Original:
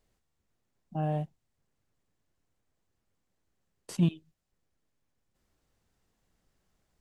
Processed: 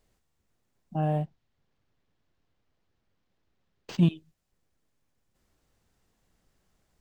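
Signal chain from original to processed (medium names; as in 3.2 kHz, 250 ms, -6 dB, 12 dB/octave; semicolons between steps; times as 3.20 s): 1.11–3.99 s: decimation joined by straight lines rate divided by 4×; trim +3.5 dB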